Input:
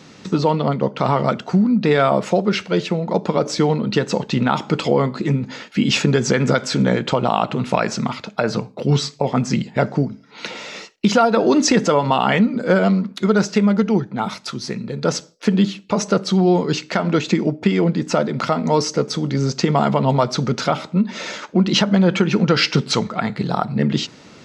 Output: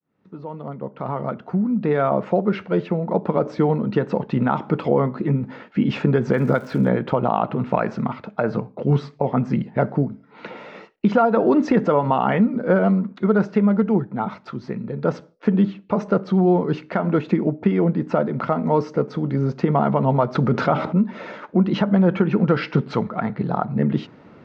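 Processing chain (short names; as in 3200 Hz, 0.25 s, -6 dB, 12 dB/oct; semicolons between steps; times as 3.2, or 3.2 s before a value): opening faded in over 2.52 s; LPF 1500 Hz 12 dB/oct; 6.32–6.87 crackle 220/s -38 dBFS; 20.35–21.04 fast leveller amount 50%; gain -1.5 dB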